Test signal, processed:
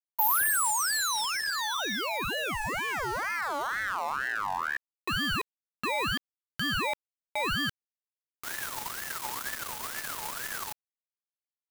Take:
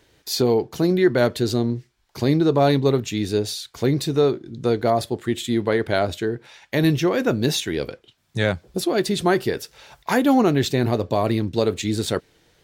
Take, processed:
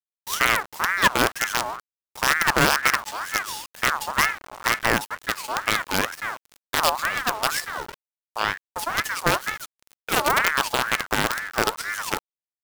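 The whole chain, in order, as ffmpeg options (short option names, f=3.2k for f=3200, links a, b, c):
-af "crystalizer=i=1:c=0,acrusher=bits=3:dc=4:mix=0:aa=0.000001,aeval=exprs='val(0)*sin(2*PI*1300*n/s+1300*0.35/2.1*sin(2*PI*2.1*n/s))':c=same"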